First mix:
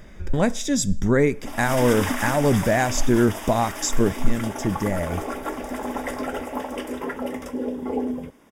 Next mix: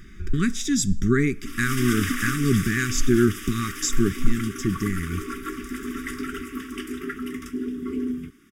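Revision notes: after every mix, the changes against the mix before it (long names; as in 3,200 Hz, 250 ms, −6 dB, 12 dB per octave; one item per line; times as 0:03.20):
master: add linear-phase brick-wall band-stop 420–1,100 Hz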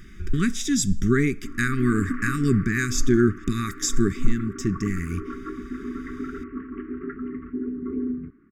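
background: add Bessel low-pass filter 1,100 Hz, order 8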